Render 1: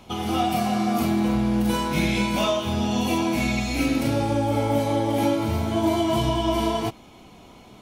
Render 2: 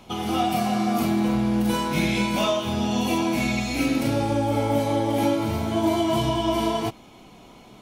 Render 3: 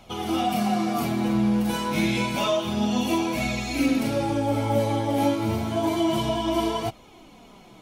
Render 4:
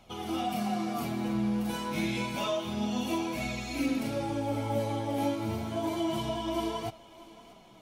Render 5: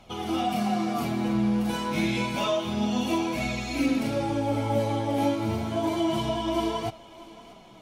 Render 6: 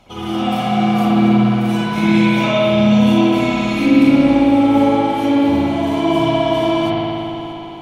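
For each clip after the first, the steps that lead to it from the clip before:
bell 71 Hz -11.5 dB 0.35 oct
flange 0.29 Hz, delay 1.3 ms, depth 9.7 ms, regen +38%; gain +2.5 dB
thinning echo 0.634 s, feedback 53%, high-pass 420 Hz, level -18.5 dB; gain -7.5 dB
high shelf 11000 Hz -8 dB; gain +5 dB
spring tank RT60 3.1 s, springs 57 ms, chirp 65 ms, DRR -9 dB; gain +2 dB

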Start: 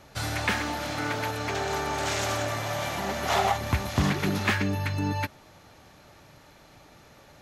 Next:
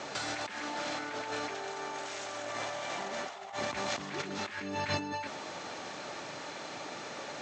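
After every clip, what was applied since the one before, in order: HPF 280 Hz 12 dB/oct; negative-ratio compressor -41 dBFS, ratio -1; steep low-pass 8200 Hz 96 dB/oct; gain +3 dB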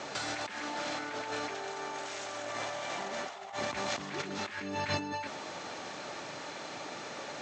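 nothing audible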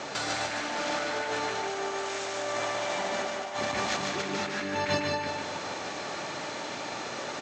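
echo 0.201 s -10 dB; in parallel at -12 dB: overloaded stage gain 30 dB; on the sum: feedback echo 0.148 s, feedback 31%, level -3.5 dB; gain +2 dB

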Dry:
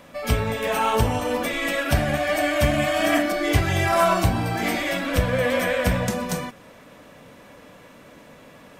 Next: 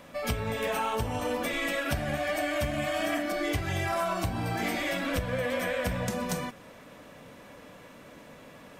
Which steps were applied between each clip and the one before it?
compressor, threshold -24 dBFS, peak gain reduction 11 dB; gain -2.5 dB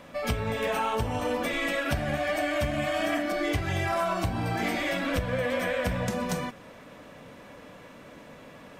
high shelf 7000 Hz -6.5 dB; gain +2 dB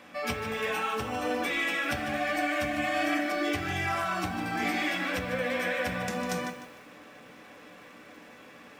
reverb RT60 0.15 s, pre-delay 3 ms, DRR 4.5 dB; lo-fi delay 0.151 s, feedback 35%, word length 8-bit, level -10 dB; gain -2.5 dB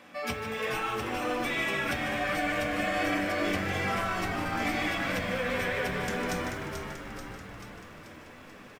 frequency-shifting echo 0.436 s, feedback 60%, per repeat -100 Hz, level -6 dB; gain -1.5 dB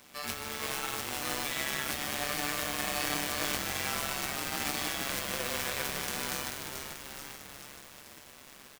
spectral whitening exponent 0.3; AM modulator 140 Hz, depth 80%

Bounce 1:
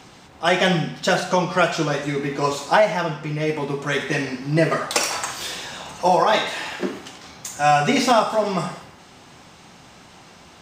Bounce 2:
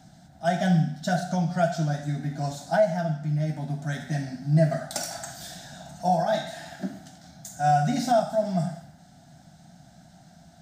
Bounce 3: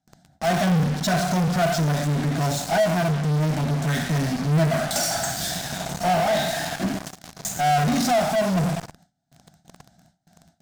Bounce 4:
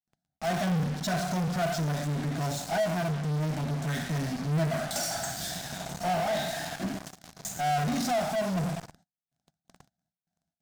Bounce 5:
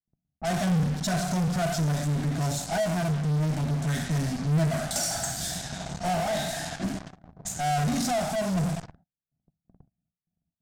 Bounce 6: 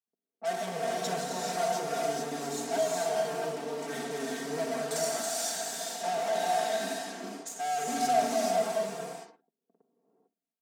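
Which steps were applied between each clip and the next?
EQ curve 110 Hz 0 dB, 160 Hz +7 dB, 300 Hz -6 dB, 450 Hz -26 dB, 680 Hz +4 dB, 1100 Hz -24 dB, 1500 Hz -5 dB, 2600 Hz -21 dB, 3700 Hz -8 dB, 14000 Hz -2 dB; gain -3.5 dB
gate with hold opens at -42 dBFS; in parallel at -5 dB: fuzz box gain 46 dB, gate -43 dBFS; on the sum: gain -5 dB
gate -49 dBFS, range -22 dB; gain -7.5 dB
dynamic EQ 8300 Hz, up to +6 dB, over -51 dBFS, Q 0.94; low-pass opened by the level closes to 400 Hz, open at -29 dBFS; low shelf 130 Hz +9.5 dB
ladder high-pass 320 Hz, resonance 50%; comb 4.4 ms, depth 100%; non-linear reverb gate 0.47 s rising, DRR -2 dB

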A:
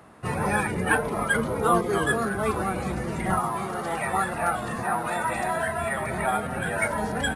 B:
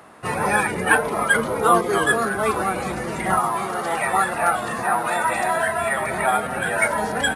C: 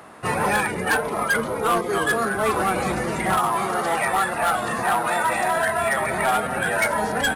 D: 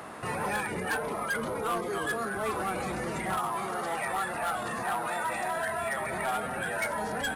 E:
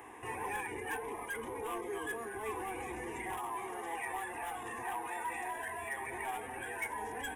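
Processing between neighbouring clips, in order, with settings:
low shelf 220 Hz -12 dB; gain +6.5 dB
vocal rider within 3 dB 0.5 s; hard clip -15.5 dBFS, distortion -14 dB
limiter -27 dBFS, peak gain reduction 11.5 dB; gain +1.5 dB
fixed phaser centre 900 Hz, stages 8; gain -5 dB

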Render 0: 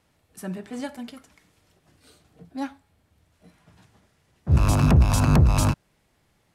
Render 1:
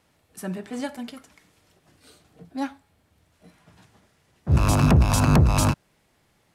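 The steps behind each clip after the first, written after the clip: low shelf 110 Hz -5.5 dB; gain +2.5 dB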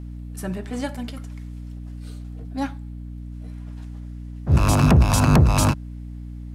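hum 60 Hz, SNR 12 dB; gain +2 dB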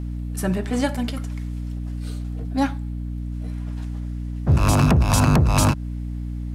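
compressor 6:1, threshold -19 dBFS, peak gain reduction 9.5 dB; gain +6 dB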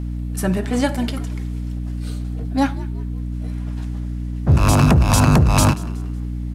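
frequency-shifting echo 0.185 s, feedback 37%, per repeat +69 Hz, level -20 dB; gain +3 dB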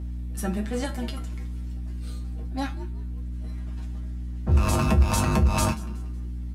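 resonator 71 Hz, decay 0.17 s, harmonics odd, mix 90%

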